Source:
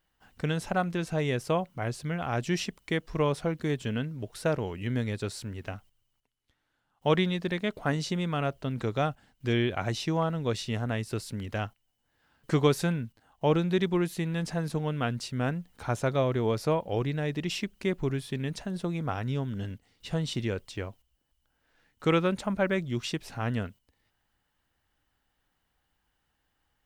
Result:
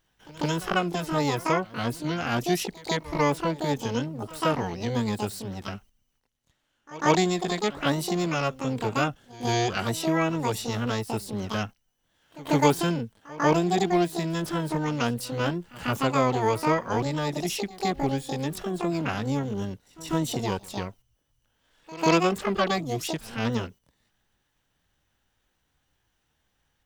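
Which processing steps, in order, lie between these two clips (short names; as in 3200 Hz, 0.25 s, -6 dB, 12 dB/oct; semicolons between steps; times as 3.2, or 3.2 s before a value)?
harmoniser +12 st 0 dB; pre-echo 0.145 s -20 dB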